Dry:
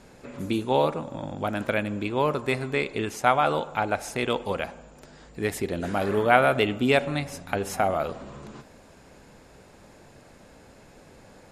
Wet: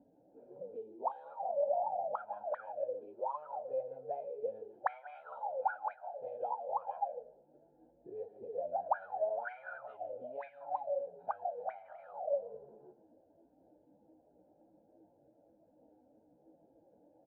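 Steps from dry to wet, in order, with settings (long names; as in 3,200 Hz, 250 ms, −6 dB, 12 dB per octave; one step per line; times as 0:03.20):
running median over 9 samples
elliptic low-pass filter 4,400 Hz, stop band 40 dB
single-tap delay 104 ms −13.5 dB
downward compressor 3 to 1, threshold −34 dBFS, peak gain reduction 15.5 dB
low-shelf EQ 440 Hz +8 dB
notch filter 2,200 Hz, Q 5.5
comb filter 1.3 ms, depth 69%
time stretch by phase vocoder 1.5×
flat-topped bell 620 Hz +13.5 dB 1.3 octaves
envelope filter 270–2,200 Hz, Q 20, up, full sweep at −15.5 dBFS
level +1.5 dB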